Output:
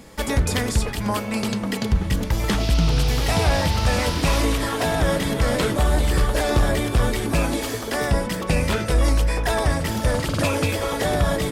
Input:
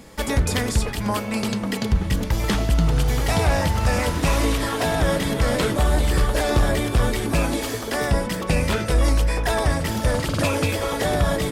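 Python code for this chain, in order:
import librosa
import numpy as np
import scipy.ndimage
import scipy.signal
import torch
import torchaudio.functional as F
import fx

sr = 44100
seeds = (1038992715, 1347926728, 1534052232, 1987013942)

y = fx.dmg_noise_band(x, sr, seeds[0], low_hz=2300.0, high_hz=5600.0, level_db=-34.0, at=(2.59, 4.41), fade=0.02)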